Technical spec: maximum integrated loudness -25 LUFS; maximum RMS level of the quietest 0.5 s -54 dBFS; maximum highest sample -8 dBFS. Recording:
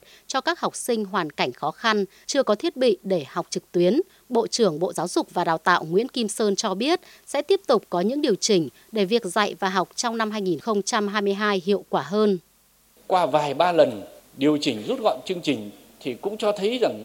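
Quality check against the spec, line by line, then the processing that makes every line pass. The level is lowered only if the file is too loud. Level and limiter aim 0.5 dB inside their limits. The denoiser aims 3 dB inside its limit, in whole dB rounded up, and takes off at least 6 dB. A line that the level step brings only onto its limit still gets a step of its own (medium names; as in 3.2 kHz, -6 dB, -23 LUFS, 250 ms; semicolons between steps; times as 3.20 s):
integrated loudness -23.5 LUFS: fail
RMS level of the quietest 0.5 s -60 dBFS: pass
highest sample -4.0 dBFS: fail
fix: trim -2 dB; peak limiter -8.5 dBFS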